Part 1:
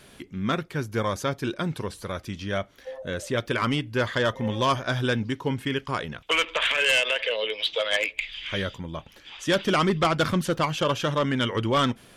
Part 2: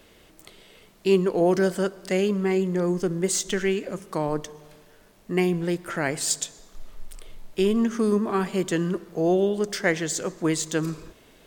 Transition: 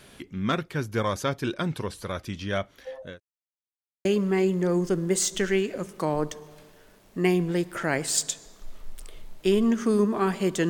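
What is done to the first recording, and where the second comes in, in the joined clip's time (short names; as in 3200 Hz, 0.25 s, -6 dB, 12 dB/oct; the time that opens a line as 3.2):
part 1
2.79–3.2 fade out equal-power
3.2–4.05 mute
4.05 switch to part 2 from 2.18 s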